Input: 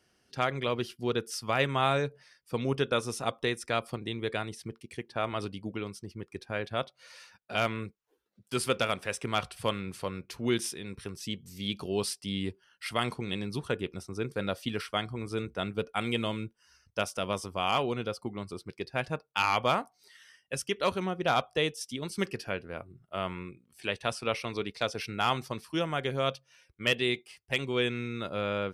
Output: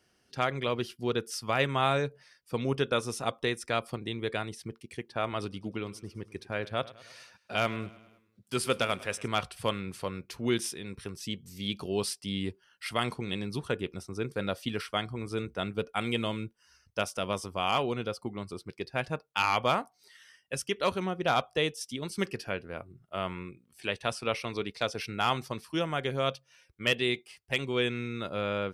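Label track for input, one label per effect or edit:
5.400000	9.280000	feedback delay 103 ms, feedback 57%, level -19.5 dB

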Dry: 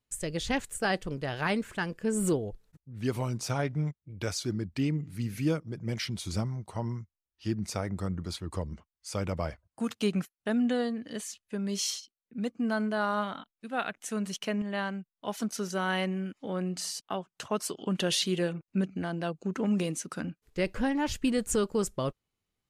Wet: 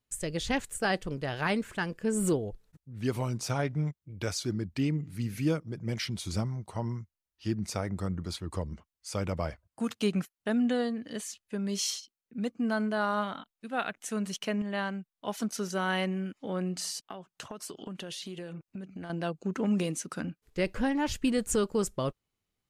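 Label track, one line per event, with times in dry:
17.010000	19.100000	compression 16:1, threshold -36 dBFS

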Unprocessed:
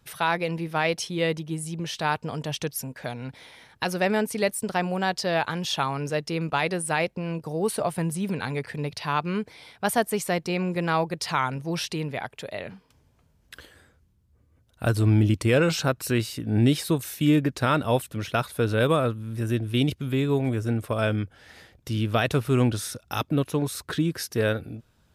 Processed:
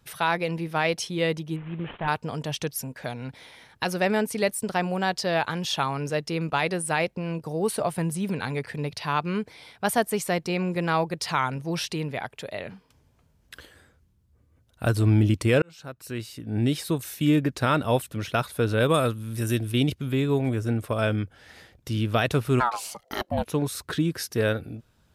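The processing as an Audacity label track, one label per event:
1.560000	2.080000	CVSD coder 16 kbps
15.620000	17.940000	fade in equal-power
18.940000	19.720000	treble shelf 3.6 kHz +12 dB
22.590000	23.450000	ring modulator 1.2 kHz -> 340 Hz

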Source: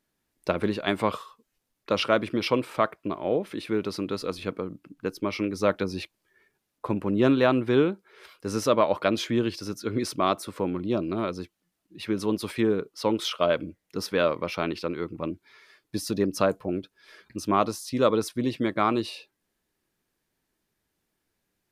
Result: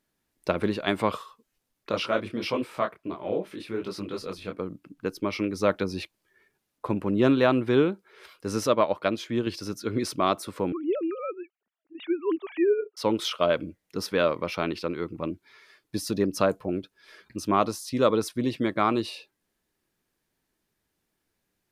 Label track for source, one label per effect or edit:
1.910000	4.600000	detune thickener each way 49 cents
8.670000	9.470000	upward expansion, over -34 dBFS
10.720000	12.970000	formants replaced by sine waves

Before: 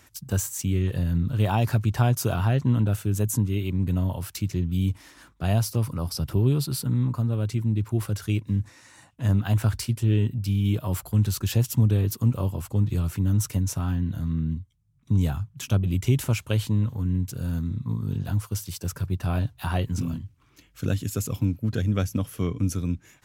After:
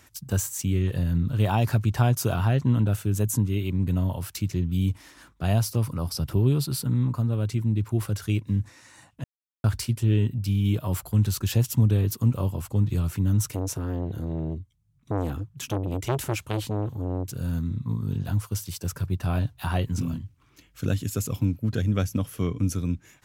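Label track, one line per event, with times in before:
9.240000	9.640000	mute
13.510000	17.300000	transformer saturation saturates under 760 Hz

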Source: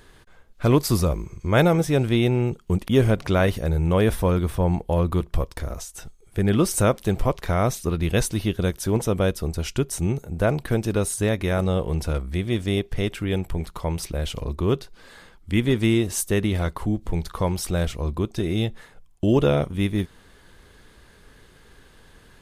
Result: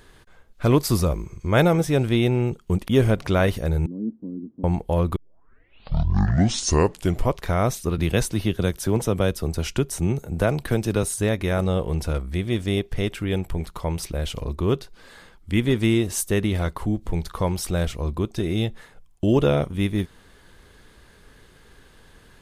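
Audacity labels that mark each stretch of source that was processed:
3.860000	4.640000	Butterworth band-pass 250 Hz, Q 3
5.160000	5.160000	tape start 2.17 s
7.980000	11.030000	three bands compressed up and down depth 40%

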